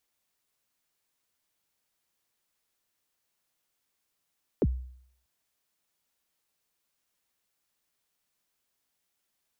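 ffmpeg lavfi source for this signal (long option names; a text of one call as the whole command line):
ffmpeg -f lavfi -i "aevalsrc='0.119*pow(10,-3*t/0.64)*sin(2*PI*(530*0.044/log(63/530)*(exp(log(63/530)*min(t,0.044)/0.044)-1)+63*max(t-0.044,0)))':duration=0.64:sample_rate=44100" out.wav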